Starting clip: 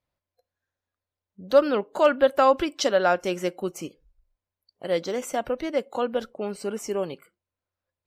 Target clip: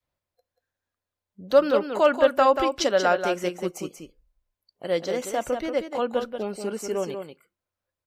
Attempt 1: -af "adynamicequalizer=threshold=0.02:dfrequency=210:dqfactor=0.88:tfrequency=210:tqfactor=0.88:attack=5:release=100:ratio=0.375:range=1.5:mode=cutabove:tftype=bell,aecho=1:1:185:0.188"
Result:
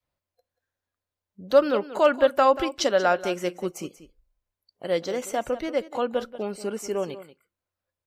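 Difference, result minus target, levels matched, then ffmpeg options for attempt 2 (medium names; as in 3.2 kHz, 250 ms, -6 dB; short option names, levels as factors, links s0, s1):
echo-to-direct -7.5 dB
-af "adynamicequalizer=threshold=0.02:dfrequency=210:dqfactor=0.88:tfrequency=210:tqfactor=0.88:attack=5:release=100:ratio=0.375:range=1.5:mode=cutabove:tftype=bell,aecho=1:1:185:0.447"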